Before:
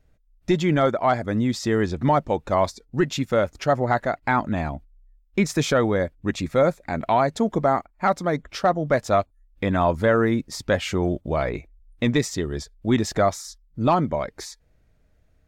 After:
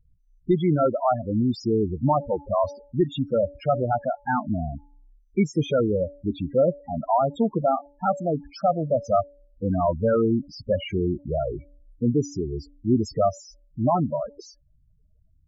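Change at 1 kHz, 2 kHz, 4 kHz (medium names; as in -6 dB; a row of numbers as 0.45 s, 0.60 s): -2.5 dB, -12.0 dB, -8.5 dB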